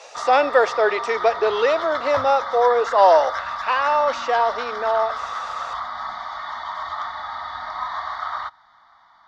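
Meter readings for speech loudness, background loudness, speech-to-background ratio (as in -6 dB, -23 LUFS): -19.5 LUFS, -28.5 LUFS, 9.0 dB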